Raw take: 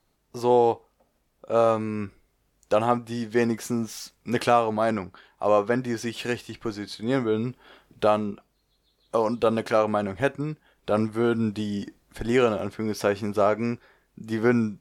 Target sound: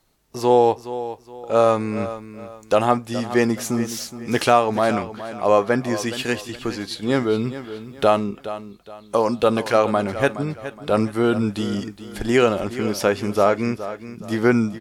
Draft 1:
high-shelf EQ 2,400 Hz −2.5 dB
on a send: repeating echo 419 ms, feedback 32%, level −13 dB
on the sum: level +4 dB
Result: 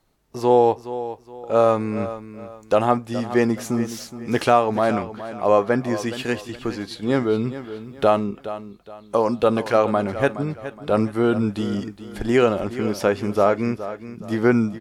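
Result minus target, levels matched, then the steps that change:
4,000 Hz band −4.0 dB
change: high-shelf EQ 2,400 Hz +4 dB

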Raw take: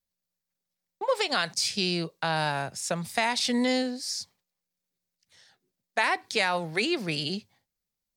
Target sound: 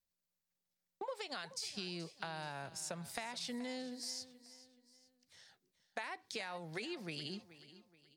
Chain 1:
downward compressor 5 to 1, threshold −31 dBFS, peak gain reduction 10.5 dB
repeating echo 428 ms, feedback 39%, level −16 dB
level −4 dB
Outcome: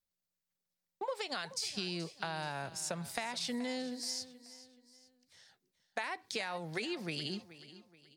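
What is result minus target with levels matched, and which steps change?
downward compressor: peak gain reduction −5 dB
change: downward compressor 5 to 1, threshold −37.5 dBFS, peak gain reduction 16 dB

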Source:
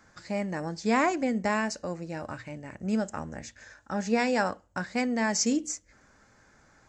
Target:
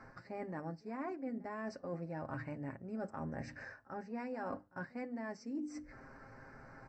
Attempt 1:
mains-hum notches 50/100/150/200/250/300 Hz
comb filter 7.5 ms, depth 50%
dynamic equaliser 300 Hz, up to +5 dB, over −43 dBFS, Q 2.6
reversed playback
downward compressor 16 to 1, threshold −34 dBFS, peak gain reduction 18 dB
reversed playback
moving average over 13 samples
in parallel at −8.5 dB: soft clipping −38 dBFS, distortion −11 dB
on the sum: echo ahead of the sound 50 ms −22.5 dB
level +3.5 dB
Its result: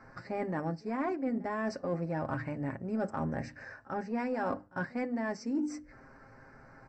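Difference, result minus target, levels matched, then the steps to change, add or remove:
downward compressor: peak gain reduction −9.5 dB
change: downward compressor 16 to 1, threshold −44 dBFS, peak gain reduction 27.5 dB

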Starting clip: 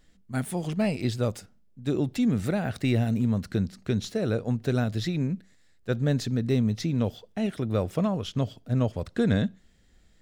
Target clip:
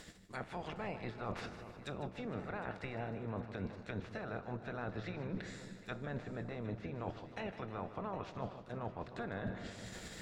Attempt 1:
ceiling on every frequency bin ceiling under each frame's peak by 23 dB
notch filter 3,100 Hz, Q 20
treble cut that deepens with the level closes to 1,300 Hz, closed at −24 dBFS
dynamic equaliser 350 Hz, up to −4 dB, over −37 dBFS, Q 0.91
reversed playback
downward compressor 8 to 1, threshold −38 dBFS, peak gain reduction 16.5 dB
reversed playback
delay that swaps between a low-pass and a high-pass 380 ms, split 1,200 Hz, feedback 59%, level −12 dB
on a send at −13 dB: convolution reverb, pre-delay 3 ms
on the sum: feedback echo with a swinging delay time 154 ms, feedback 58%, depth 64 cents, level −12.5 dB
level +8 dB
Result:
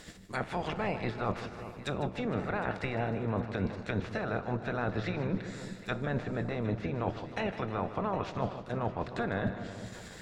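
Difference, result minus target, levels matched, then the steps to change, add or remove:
downward compressor: peak gain reduction −9 dB
change: downward compressor 8 to 1, threshold −48.5 dBFS, peak gain reduction 25.5 dB

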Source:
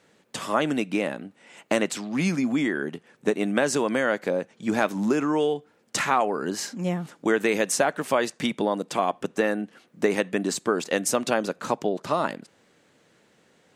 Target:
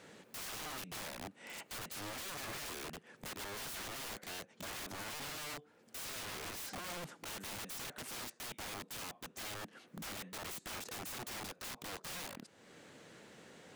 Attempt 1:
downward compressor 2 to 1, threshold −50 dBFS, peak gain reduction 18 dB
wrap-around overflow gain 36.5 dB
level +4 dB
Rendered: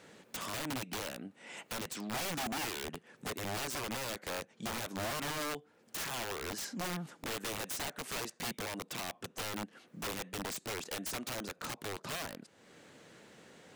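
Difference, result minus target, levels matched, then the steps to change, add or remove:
wrap-around overflow: distortion −16 dB
change: wrap-around overflow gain 43.5 dB

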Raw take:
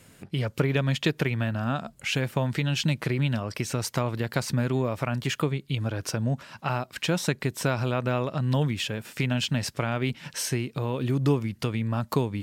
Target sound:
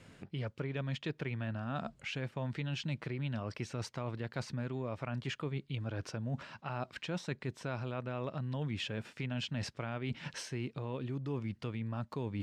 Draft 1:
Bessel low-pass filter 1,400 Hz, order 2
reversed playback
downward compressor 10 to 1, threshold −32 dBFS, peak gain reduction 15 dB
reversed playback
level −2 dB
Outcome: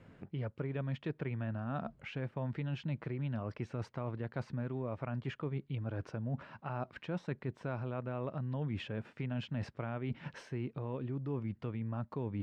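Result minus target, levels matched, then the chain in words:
4,000 Hz band −9.0 dB
Bessel low-pass filter 4,100 Hz, order 2
reversed playback
downward compressor 10 to 1, threshold −32 dBFS, peak gain reduction 15 dB
reversed playback
level −2 dB

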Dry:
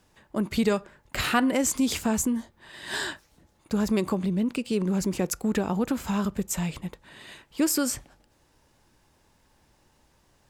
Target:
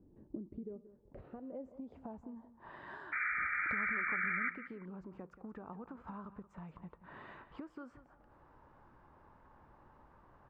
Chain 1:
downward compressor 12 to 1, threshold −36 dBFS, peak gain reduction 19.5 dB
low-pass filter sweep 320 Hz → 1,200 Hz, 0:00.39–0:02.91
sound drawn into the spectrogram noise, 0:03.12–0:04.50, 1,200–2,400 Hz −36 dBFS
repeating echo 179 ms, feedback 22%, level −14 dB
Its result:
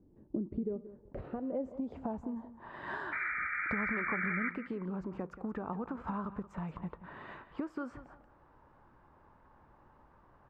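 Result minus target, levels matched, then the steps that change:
downward compressor: peak gain reduction −9.5 dB
change: downward compressor 12 to 1, threshold −46.5 dBFS, peak gain reduction 29 dB

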